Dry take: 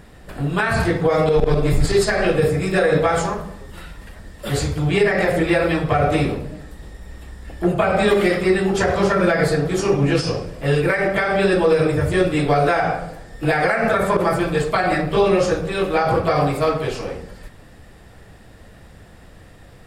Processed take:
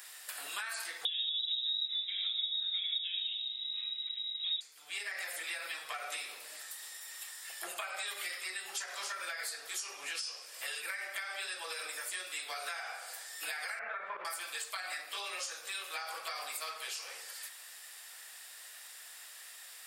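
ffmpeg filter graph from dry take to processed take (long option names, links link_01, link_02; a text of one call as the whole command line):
ffmpeg -i in.wav -filter_complex "[0:a]asettb=1/sr,asplit=3[link_01][link_02][link_03];[link_01]atrim=end=1.054[link_04];[link_02]atrim=start=1.05:end=4.61,asetpts=PTS-STARTPTS,afade=type=in:duration=0.004:curve=qsin,afade=type=out:start_time=3.556:duration=0.004:curve=qsin,equalizer=frequency=120:width=0.32:gain=14,lowpass=frequency=3300:width_type=q:width=0.5098,lowpass=frequency=3300:width_type=q:width=0.6013,lowpass=frequency=3300:width_type=q:width=0.9,lowpass=frequency=3300:width_type=q:width=2.563,afreqshift=-3900[link_05];[link_03]atrim=start=4.606[link_06];[link_04][link_05]acrossfade=duration=0.004:curve1=hsin:curve2=qsin[link_07];[link_07][link_06]acrossfade=duration=0.004:curve1=qsin:curve2=hsin,asettb=1/sr,asplit=3[link_08][link_09][link_10];[link_08]atrim=end=13.794[link_11];[link_09]atrim=start=13.79:end=14.25,asetpts=PTS-STARTPTS,afade=type=in:duration=0.004:curve=qsin,afade=type=out:start_time=0.456:duration=0.004:curve=qsin,lowpass=frequency=2300:width=0.5412,lowpass=frequency=2300:width=1.3066,lowshelf=frequency=270:gain=12[link_12];[link_10]atrim=start=14.246[link_13];[link_11][link_12]acrossfade=duration=0.004:curve1=hsin:curve2=qsin[link_14];[link_14][link_13]acrossfade=duration=0.004:curve1=qsin:curve2=hsin,highpass=870,aderivative,acompressor=threshold=-49dB:ratio=5,volume=10dB" out.wav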